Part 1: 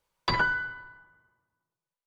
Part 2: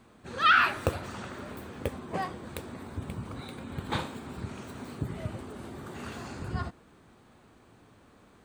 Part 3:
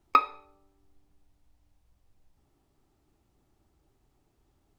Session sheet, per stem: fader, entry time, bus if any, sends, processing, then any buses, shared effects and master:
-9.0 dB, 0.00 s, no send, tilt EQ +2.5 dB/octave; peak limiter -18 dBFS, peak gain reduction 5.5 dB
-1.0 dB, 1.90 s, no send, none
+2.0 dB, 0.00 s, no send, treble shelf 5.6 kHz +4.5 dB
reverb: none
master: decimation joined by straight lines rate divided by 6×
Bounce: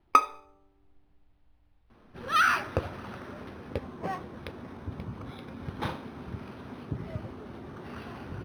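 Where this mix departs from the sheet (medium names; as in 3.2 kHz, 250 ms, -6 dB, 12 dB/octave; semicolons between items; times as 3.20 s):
stem 1: muted; stem 3: missing treble shelf 5.6 kHz +4.5 dB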